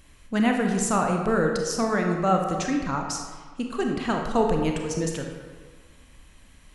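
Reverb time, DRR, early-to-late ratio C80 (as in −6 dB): 1.5 s, 2.0 dB, 5.5 dB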